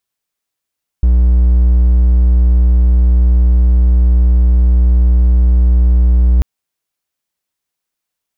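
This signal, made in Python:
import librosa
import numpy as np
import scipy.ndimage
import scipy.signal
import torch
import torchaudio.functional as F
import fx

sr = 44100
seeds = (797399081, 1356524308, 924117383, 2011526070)

y = 10.0 ** (-4.0 / 20.0) * (1.0 - 4.0 * np.abs(np.mod(60.6 * (np.arange(round(5.39 * sr)) / sr) + 0.25, 1.0) - 0.5))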